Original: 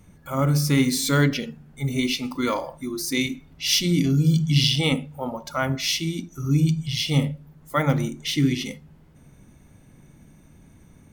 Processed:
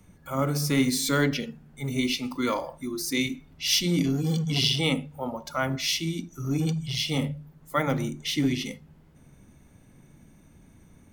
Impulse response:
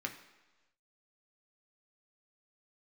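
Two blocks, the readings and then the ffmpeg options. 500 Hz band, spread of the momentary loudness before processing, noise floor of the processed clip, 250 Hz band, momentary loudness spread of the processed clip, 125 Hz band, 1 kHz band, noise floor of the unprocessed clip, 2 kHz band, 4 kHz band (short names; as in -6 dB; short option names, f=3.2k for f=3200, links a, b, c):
-2.0 dB, 11 LU, -56 dBFS, -3.5 dB, 10 LU, -7.0 dB, -2.5 dB, -53 dBFS, -2.5 dB, -2.5 dB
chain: -filter_complex "[0:a]bandreject=f=50:t=h:w=6,bandreject=f=100:t=h:w=6,bandreject=f=150:t=h:w=6,acrossover=split=150|790|2700[a][b][c][d];[a]aeval=exprs='0.0335*(abs(mod(val(0)/0.0335+3,4)-2)-1)':c=same[e];[e][b][c][d]amix=inputs=4:normalize=0,volume=-2.5dB"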